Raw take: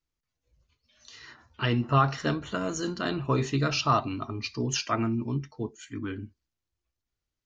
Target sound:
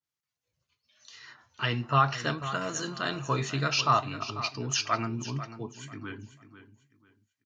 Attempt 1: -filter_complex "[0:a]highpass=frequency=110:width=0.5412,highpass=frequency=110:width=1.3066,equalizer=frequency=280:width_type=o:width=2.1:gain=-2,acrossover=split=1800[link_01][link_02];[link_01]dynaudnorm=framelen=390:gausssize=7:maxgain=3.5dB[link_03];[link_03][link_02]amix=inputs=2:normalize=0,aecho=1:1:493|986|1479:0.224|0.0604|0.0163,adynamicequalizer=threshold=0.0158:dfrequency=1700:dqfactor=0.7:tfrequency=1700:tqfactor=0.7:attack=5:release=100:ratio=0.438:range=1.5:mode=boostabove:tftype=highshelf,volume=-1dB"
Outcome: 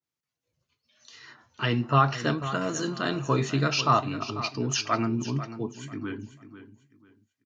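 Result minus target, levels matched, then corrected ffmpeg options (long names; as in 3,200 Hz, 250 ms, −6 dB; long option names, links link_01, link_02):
250 Hz band +5.0 dB
-filter_complex "[0:a]highpass=frequency=110:width=0.5412,highpass=frequency=110:width=1.3066,equalizer=frequency=280:width_type=o:width=2.1:gain=-10,acrossover=split=1800[link_01][link_02];[link_01]dynaudnorm=framelen=390:gausssize=7:maxgain=3.5dB[link_03];[link_03][link_02]amix=inputs=2:normalize=0,aecho=1:1:493|986|1479:0.224|0.0604|0.0163,adynamicequalizer=threshold=0.0158:dfrequency=1700:dqfactor=0.7:tfrequency=1700:tqfactor=0.7:attack=5:release=100:ratio=0.438:range=1.5:mode=boostabove:tftype=highshelf,volume=-1dB"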